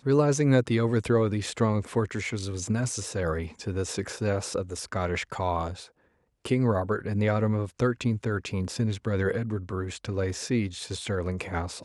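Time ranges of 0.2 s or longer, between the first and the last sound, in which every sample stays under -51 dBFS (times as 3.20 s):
5.89–6.45 s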